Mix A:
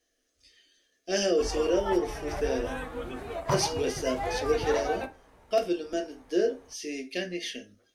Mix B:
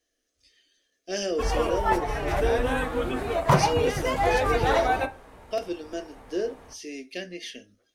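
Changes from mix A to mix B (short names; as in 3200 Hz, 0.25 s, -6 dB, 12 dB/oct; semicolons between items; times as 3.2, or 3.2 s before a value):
speech: send -7.5 dB; background +9.0 dB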